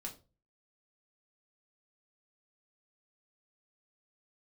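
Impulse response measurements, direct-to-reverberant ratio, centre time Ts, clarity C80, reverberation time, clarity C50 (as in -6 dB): -0.5 dB, 14 ms, 18.5 dB, 0.35 s, 13.5 dB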